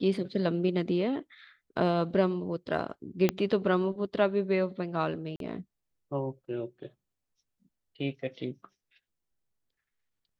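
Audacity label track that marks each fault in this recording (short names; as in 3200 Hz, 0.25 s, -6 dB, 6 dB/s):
3.290000	3.290000	pop -11 dBFS
5.360000	5.400000	gap 42 ms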